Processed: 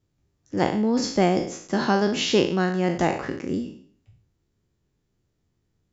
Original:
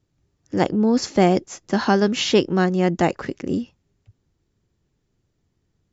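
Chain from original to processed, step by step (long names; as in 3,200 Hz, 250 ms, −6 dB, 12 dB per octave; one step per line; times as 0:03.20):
peak hold with a decay on every bin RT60 0.55 s
level −4.5 dB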